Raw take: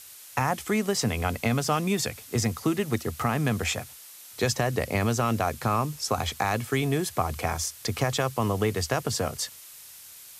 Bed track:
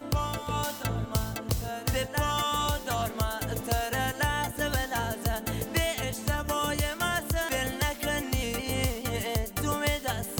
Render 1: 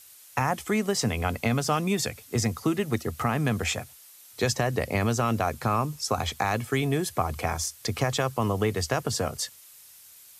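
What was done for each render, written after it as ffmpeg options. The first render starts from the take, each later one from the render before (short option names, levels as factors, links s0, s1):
-af "afftdn=nr=6:nf=-47"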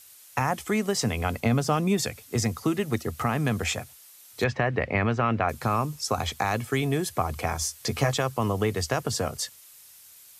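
-filter_complex "[0:a]asettb=1/sr,asplit=3[s0][s1][s2];[s0]atrim=end=1.404[s3];[s1]atrim=start=1.4:end=1.98,asetpts=PTS-STARTPTS,afade=t=in:d=0.004:c=qsin,afade=t=out:st=0.576:d=0.004:c=qsin,tiltshelf=f=970:g=3[s4];[s2]atrim=start=1.976[s5];[s3][s4]acrossfade=d=0.004:c1=hsin:c2=qsin[s6];[s6][s5]acrossfade=d=0.004:c1=qsin:c2=hsin,asettb=1/sr,asplit=3[s7][s8][s9];[s7]atrim=end=4.444[s10];[s8]atrim=start=4.44:end=5.49,asetpts=PTS-STARTPTS,afade=t=in:d=0.004:c=qsin,afade=t=out:st=1.046:d=0.004:c=qsin,lowpass=f=2200:t=q:w=1.6[s11];[s9]atrim=start=5.486[s12];[s10][s11]acrossfade=d=0.004:c1=hsin:c2=qsin[s13];[s13][s12]acrossfade=d=0.004:c1=qsin:c2=hsin,asettb=1/sr,asplit=3[s14][s15][s16];[s14]atrim=end=7.604[s17];[s15]atrim=start=7.6:end=8.14,asetpts=PTS-STARTPTS,afade=t=in:d=0.004:c=qsin,afade=t=out:st=0.536:d=0.004:c=qsin,asplit=2[s18][s19];[s19]adelay=14,volume=0.631[s20];[s18][s20]amix=inputs=2:normalize=0,atrim=end_sample=23814[s21];[s16]atrim=start=8.136[s22];[s17][s21]acrossfade=d=0.004:c1=hsin:c2=qsin[s23];[s23][s22]acrossfade=d=0.004:c1=qsin:c2=hsin"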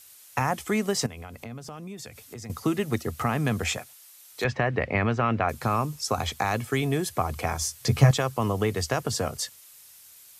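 -filter_complex "[0:a]asettb=1/sr,asplit=3[s0][s1][s2];[s0]atrim=end=1.064[s3];[s1]atrim=start=1.06:end=2.5,asetpts=PTS-STARTPTS,afade=t=in:d=0.004:c=qsin,afade=t=out:st=1.436:d=0.004:c=qsin,acompressor=threshold=0.0112:ratio=4:attack=3.2:release=140:knee=1:detection=peak[s4];[s2]atrim=start=2.496[s5];[s3][s4]acrossfade=d=0.004:c1=hsin:c2=qsin[s6];[s6][s5]acrossfade=d=0.004:c1=qsin:c2=hsin,asettb=1/sr,asplit=3[s7][s8][s9];[s7]atrim=end=3.774[s10];[s8]atrim=start=3.77:end=4.45,asetpts=PTS-STARTPTS,afade=t=in:d=0.004:c=qsin,afade=t=out:st=0.676:d=0.004:c=qsin,highpass=f=480:p=1[s11];[s9]atrim=start=4.446[s12];[s10][s11]acrossfade=d=0.004:c1=hsin:c2=qsin[s13];[s13][s12]acrossfade=d=0.004:c1=qsin:c2=hsin,asettb=1/sr,asplit=3[s14][s15][s16];[s14]atrim=end=7.674[s17];[s15]atrim=start=7.67:end=8.11,asetpts=PTS-STARTPTS,afade=t=in:d=0.004:c=qsin,afade=t=out:st=0.436:d=0.004:c=qsin,equalizer=f=120:t=o:w=0.88:g=11.5[s18];[s16]atrim=start=8.106[s19];[s17][s18]acrossfade=d=0.004:c1=hsin:c2=qsin[s20];[s20][s19]acrossfade=d=0.004:c1=qsin:c2=hsin"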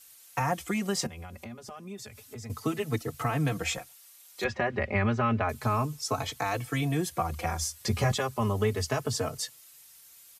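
-filter_complex "[0:a]asplit=2[s0][s1];[s1]adelay=4,afreqshift=0.31[s2];[s0][s2]amix=inputs=2:normalize=1"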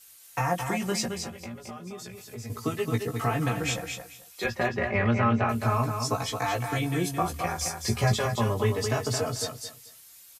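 -filter_complex "[0:a]asplit=2[s0][s1];[s1]adelay=17,volume=0.596[s2];[s0][s2]amix=inputs=2:normalize=0,aecho=1:1:219|438|657:0.501|0.1|0.02"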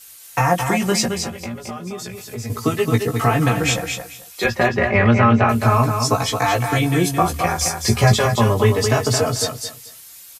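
-af "volume=3.16,alimiter=limit=0.708:level=0:latency=1"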